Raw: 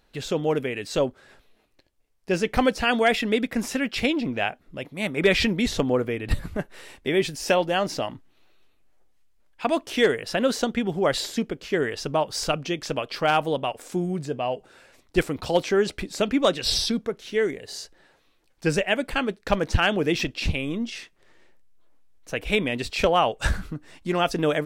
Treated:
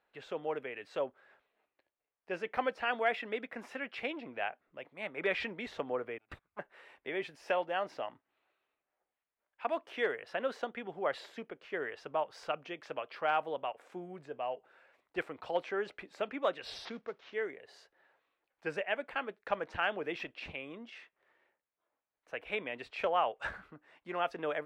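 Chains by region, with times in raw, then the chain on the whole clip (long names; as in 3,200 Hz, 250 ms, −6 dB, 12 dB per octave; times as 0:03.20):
0:06.18–0:06.59: lower of the sound and its delayed copy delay 0.81 ms + noise gate −27 dBFS, range −27 dB
0:16.85–0:17.34: variable-slope delta modulation 32 kbit/s + bass and treble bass +2 dB, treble +4 dB
whole clip: high-pass filter 150 Hz 6 dB per octave; three-way crossover with the lows and the highs turned down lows −14 dB, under 460 Hz, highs −22 dB, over 2,700 Hz; level −8 dB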